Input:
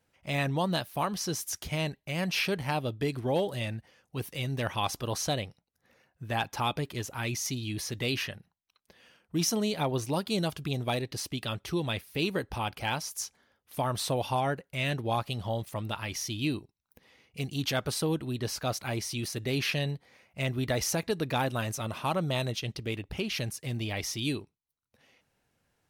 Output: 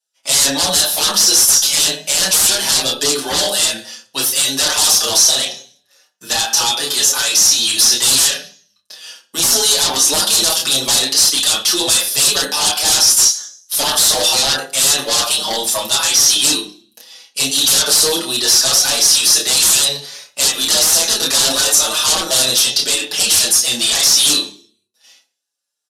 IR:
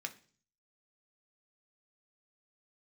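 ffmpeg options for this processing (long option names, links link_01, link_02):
-filter_complex "[0:a]asplit=2[link_01][link_02];[link_02]adelay=30,volume=-5dB[link_03];[link_01][link_03]amix=inputs=2:normalize=0,agate=range=-33dB:threshold=-53dB:ratio=3:detection=peak,highpass=550[link_04];[1:a]atrim=start_sample=2205[link_05];[link_04][link_05]afir=irnorm=-1:irlink=0,asettb=1/sr,asplit=3[link_06][link_07][link_08];[link_06]atrim=end=5.064[link_09];[link_07]atrim=start=5.06:end=7.69,asetpts=PTS-STARTPTS,afade=type=in:duration=0.004:curve=qsin,afade=type=out:start_time=2.626:duration=0.004:curve=qsin,acompressor=threshold=-35dB:ratio=10[link_10];[link_08]atrim=start=7.686[link_11];[link_09][link_10]acrossfade=duration=0.004:curve1=hsin:curve2=qsin[link_12];[link_12][link_11]acrossfade=duration=0.004:curve1=qsin:curve2=hsin,aeval=exprs='0.15*sin(PI/2*7.94*val(0)/0.15)':channel_layout=same,aexciter=amount=6:drive=4.5:freq=3300,acontrast=81,lowpass=frequency=12000:width=0.5412,lowpass=frequency=12000:width=1.3066,equalizer=frequency=2200:width_type=o:width=0.47:gain=-6,asplit=2[link_13][link_14];[link_14]adelay=5.8,afreqshift=0.76[link_15];[link_13][link_15]amix=inputs=2:normalize=1,volume=-3dB"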